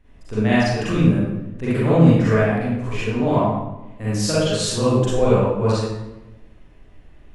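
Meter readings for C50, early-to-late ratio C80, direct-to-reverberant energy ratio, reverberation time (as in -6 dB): -5.0 dB, 1.0 dB, -10.5 dB, 1.0 s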